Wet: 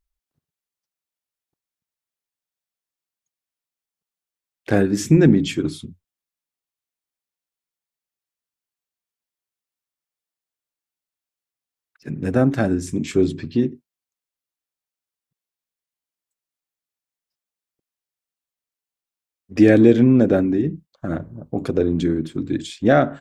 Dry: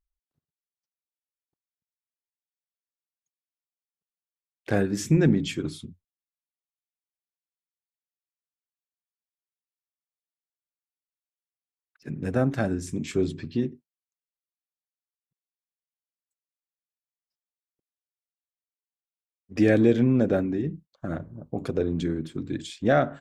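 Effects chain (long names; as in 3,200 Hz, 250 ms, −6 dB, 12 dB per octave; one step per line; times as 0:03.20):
dynamic equaliser 300 Hz, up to +4 dB, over −35 dBFS, Q 1.9
level +5 dB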